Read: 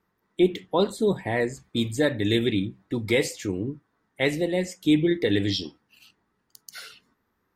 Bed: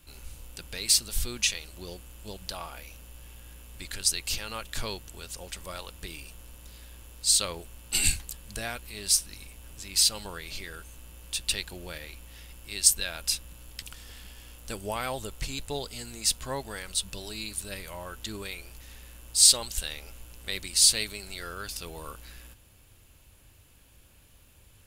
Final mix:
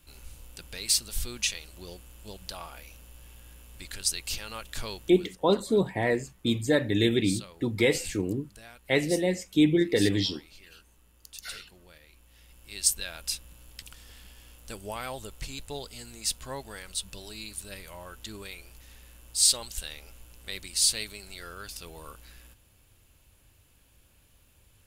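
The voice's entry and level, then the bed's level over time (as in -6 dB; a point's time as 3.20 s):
4.70 s, -1.0 dB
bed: 5.05 s -2.5 dB
5.38 s -14.5 dB
12.02 s -14.5 dB
12.80 s -4 dB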